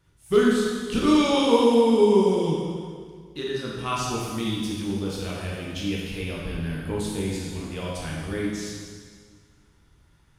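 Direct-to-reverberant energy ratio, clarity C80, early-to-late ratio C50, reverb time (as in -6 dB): -5.0 dB, 1.5 dB, -0.5 dB, 1.8 s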